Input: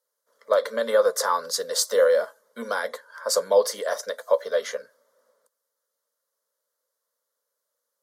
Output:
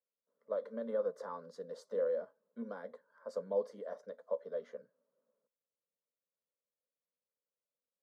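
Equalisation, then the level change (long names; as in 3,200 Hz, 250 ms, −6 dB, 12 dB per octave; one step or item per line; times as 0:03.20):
resonant band-pass 170 Hz, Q 1.6
−2.0 dB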